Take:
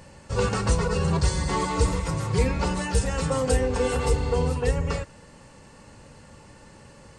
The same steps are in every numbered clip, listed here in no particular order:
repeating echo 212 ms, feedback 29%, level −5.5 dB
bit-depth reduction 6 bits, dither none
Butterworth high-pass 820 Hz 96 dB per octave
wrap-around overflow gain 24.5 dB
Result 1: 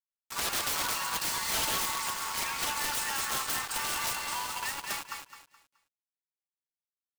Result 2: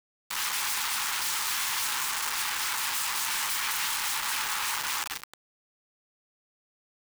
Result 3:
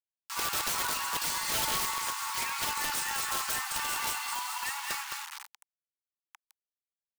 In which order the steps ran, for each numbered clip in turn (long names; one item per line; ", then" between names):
Butterworth high-pass, then bit-depth reduction, then repeating echo, then wrap-around overflow
repeating echo, then wrap-around overflow, then Butterworth high-pass, then bit-depth reduction
repeating echo, then bit-depth reduction, then Butterworth high-pass, then wrap-around overflow